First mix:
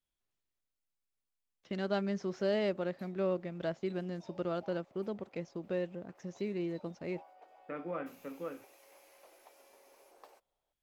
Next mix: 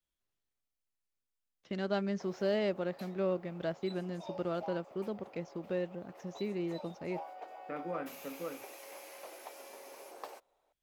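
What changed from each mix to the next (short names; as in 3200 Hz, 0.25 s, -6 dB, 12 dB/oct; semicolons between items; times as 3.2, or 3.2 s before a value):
background +11.5 dB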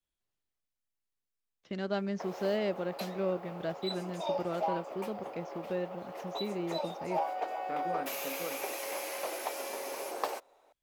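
background +12.0 dB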